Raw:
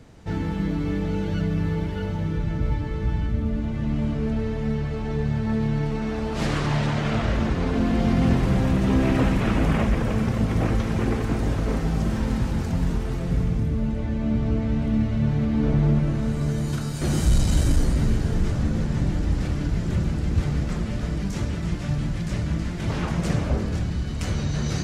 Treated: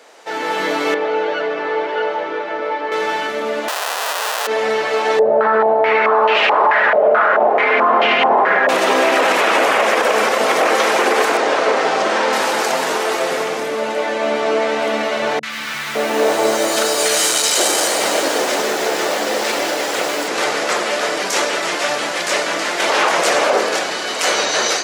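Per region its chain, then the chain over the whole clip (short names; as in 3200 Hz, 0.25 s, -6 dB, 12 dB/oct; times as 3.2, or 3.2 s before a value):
0.94–2.92 HPF 290 Hz + tape spacing loss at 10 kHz 29 dB
3.68–4.47 half-waves squared off + HPF 740 Hz + notch 2200 Hz, Q 9.4
5.19–8.69 comb 4.8 ms, depth 36% + stepped low-pass 4.6 Hz 590–2700 Hz
11.37–12.33 delta modulation 64 kbps, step -42 dBFS + air absorption 99 m
15.39–20.28 three bands offset in time lows, highs, mids 40/560 ms, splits 170/1300 Hz + lo-fi delay 0.1 s, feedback 80%, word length 7-bit, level -14 dB
whole clip: HPF 490 Hz 24 dB/oct; AGC gain up to 9 dB; maximiser +16.5 dB; gain -4.5 dB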